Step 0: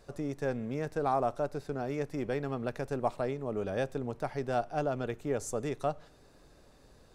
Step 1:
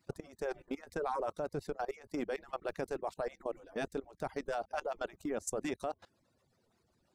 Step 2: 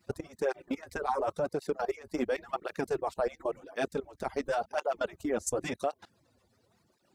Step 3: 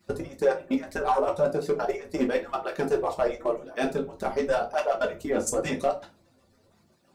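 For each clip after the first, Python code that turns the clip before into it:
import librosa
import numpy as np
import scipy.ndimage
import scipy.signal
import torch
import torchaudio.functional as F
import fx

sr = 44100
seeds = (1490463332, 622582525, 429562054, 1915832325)

y1 = fx.hpss_only(x, sr, part='percussive')
y1 = fx.level_steps(y1, sr, step_db=20)
y1 = y1 * librosa.db_to_amplitude(5.0)
y2 = fx.flanger_cancel(y1, sr, hz=0.93, depth_ms=7.5)
y2 = y2 * librosa.db_to_amplitude(8.5)
y3 = np.clip(y2, -10.0 ** (-22.5 / 20.0), 10.0 ** (-22.5 / 20.0))
y3 = fx.room_shoebox(y3, sr, seeds[0], volume_m3=120.0, walls='furnished', distance_m=1.2)
y3 = y3 * librosa.db_to_amplitude(3.0)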